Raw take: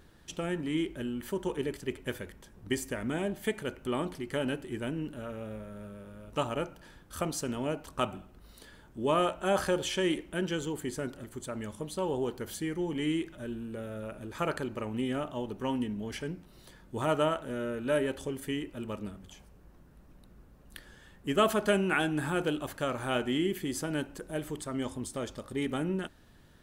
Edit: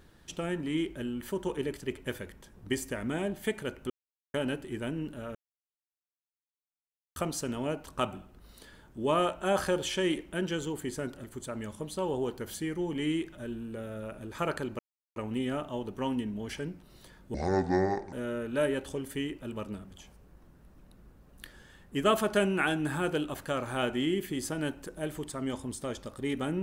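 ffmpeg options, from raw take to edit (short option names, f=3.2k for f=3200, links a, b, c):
-filter_complex "[0:a]asplit=8[a][b][c][d][e][f][g][h];[a]atrim=end=3.9,asetpts=PTS-STARTPTS,afade=t=out:st=3.896:d=0.004:c=hsin[i];[b]atrim=start=3.9:end=4.34,asetpts=PTS-STARTPTS,volume=0[j];[c]atrim=start=4.34:end=5.35,asetpts=PTS-STARTPTS,afade=t=in:d=0.004:c=hsin,afade=t=out:st=1.006:d=0.004:c=hsin[k];[d]atrim=start=5.35:end=7.16,asetpts=PTS-STARTPTS,volume=0[l];[e]atrim=start=7.16:end=14.79,asetpts=PTS-STARTPTS,afade=t=in:d=0.004:c=hsin,afade=t=out:st=7.626:d=0.004:c=hsin,apad=pad_dur=0.37[m];[f]atrim=start=14.79:end=16.974,asetpts=PTS-STARTPTS,afade=t=in:d=0.004:c=hsin[n];[g]atrim=start=16.97:end=17.45,asetpts=PTS-STARTPTS,asetrate=26901,aresample=44100[o];[h]atrim=start=17.446[p];[i][j][k][l][m][n]concat=n=6:v=0:a=1[q];[q][o]acrossfade=d=0.004:c1=hsin:c2=hsin[r];[r][p]acrossfade=d=0.004:c1=hsin:c2=hsin"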